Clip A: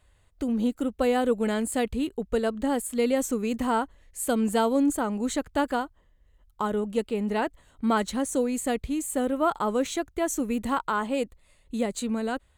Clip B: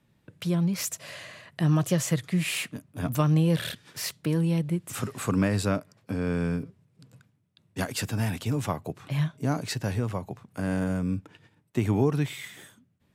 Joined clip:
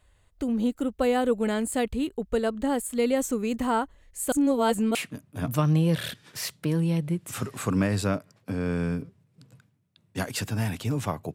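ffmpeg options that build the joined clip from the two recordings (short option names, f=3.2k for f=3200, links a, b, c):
-filter_complex "[0:a]apad=whole_dur=11.34,atrim=end=11.34,asplit=2[a][b];[a]atrim=end=4.322[c];[b]atrim=start=4.318:end=4.952,asetpts=PTS-STARTPTS,areverse[d];[1:a]atrim=start=2.558:end=8.95[e];[c][d]acrossfade=d=0.004:c1=hsin:c2=hsin[f];[f][e]acrossfade=d=0.004:c1=hsin:c2=hsin"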